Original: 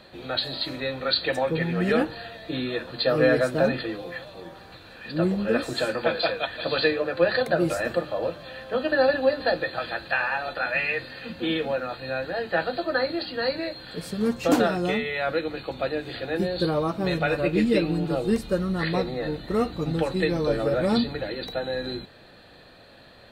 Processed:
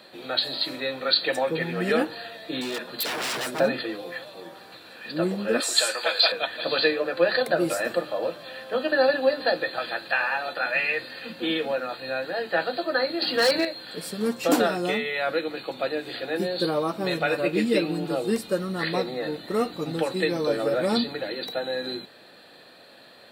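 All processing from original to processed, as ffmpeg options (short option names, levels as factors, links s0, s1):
-filter_complex "[0:a]asettb=1/sr,asplit=3[s0][s1][s2];[s0]atrim=end=2.614[s3];[s1]atrim=start=2.61:end=3.6,asetpts=PTS-STARTPTS,afade=t=in:d=0.004:c=qsin,afade=t=out:st=0.986:d=0.004:c=qsin,aecho=1:1:4.9:0.35,atrim=end_sample=43659,aeval=exprs='0.0562*(abs(mod(val(0)/0.0562+3,4)-2)-1)':c=same[s4];[s2]atrim=start=3.596[s5];[s3][s4]acrossfade=d=0.004:c1=hsin:c2=qsin[s6];[s6][s5]acrossfade=d=0.004:c1=qsin:c2=hsin,asettb=1/sr,asplit=3[s7][s8][s9];[s7]atrim=end=5.604[s10];[s8]atrim=start=5.6:end=6.32,asetpts=PTS-STARTPTS,afade=t=in:d=0.004:c=qsin,afade=t=out:st=0.716:d=0.004:c=qsin,highpass=630,equalizer=f=7100:w=0.65:g=13.5[s11];[s9]atrim=start=6.316[s12];[s10][s11]acrossfade=d=0.004:c1=hsin:c2=qsin[s13];[s13][s12]acrossfade=d=0.004:c1=qsin:c2=hsin,asettb=1/sr,asplit=3[s14][s15][s16];[s14]atrim=end=13.224[s17];[s15]atrim=start=13.22:end=13.65,asetpts=PTS-STARTPTS,afade=t=in:d=0.004:c=qsin,afade=t=out:st=0.426:d=0.004:c=qsin,asoftclip=type=hard:threshold=0.0708,acontrast=84[s18];[s16]atrim=start=13.646[s19];[s17][s18]acrossfade=d=0.004:c1=hsin:c2=qsin[s20];[s20][s19]acrossfade=d=0.004:c1=qsin:c2=hsin,highpass=220,highshelf=f=5700:g=8,bandreject=f=6400:w=13"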